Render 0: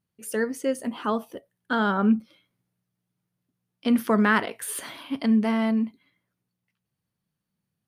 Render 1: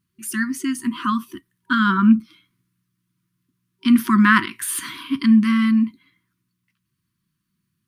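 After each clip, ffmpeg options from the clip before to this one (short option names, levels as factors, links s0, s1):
-af "afftfilt=real='re*(1-between(b*sr/4096,380,950))':imag='im*(1-between(b*sr/4096,380,950))':win_size=4096:overlap=0.75,volume=2.24"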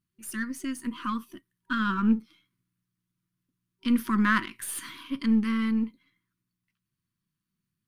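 -af "aeval=exprs='if(lt(val(0),0),0.708*val(0),val(0))':c=same,volume=0.398"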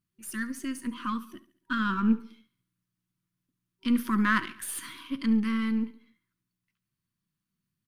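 -af "aecho=1:1:70|140|210|280:0.141|0.0678|0.0325|0.0156,volume=0.891"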